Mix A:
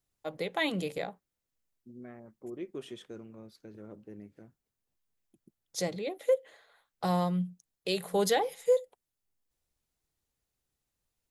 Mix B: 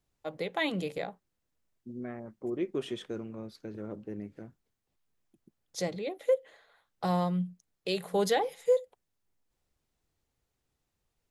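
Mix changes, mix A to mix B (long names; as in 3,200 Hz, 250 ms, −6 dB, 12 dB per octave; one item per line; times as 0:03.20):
second voice +7.5 dB
master: add high-shelf EQ 7,200 Hz −7.5 dB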